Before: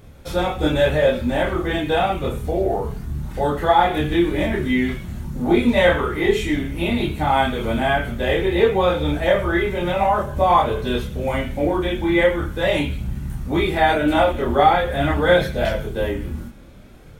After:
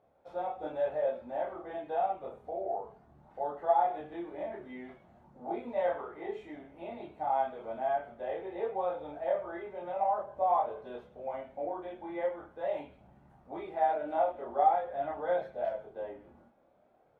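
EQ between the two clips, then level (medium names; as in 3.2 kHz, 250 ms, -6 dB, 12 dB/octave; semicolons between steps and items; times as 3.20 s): band-pass filter 710 Hz, Q 3.1; -8.5 dB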